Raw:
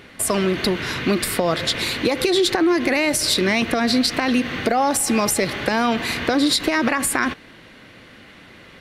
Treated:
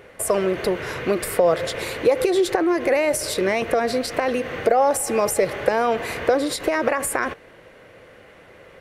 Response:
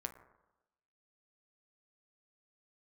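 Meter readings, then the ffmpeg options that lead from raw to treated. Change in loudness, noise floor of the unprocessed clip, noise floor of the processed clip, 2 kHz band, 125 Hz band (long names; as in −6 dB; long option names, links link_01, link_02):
−2.0 dB, −46 dBFS, −48 dBFS, −4.5 dB, −6.0 dB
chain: -af "equalizer=frequency=250:width_type=o:width=1:gain=-9,equalizer=frequency=500:width_type=o:width=1:gain=11,equalizer=frequency=4000:width_type=o:width=1:gain=-9,volume=-3dB"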